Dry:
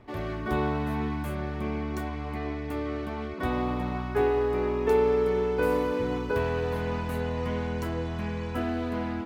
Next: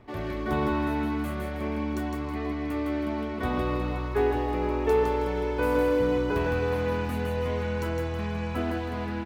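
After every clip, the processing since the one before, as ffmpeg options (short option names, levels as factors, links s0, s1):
-af "aecho=1:1:160|320|480|640:0.668|0.221|0.0728|0.024"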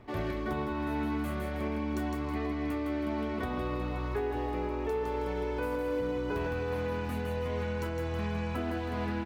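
-af "alimiter=limit=0.0631:level=0:latency=1:release=419"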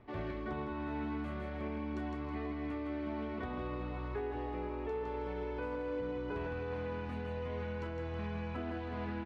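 -af "lowpass=3700,volume=0.501"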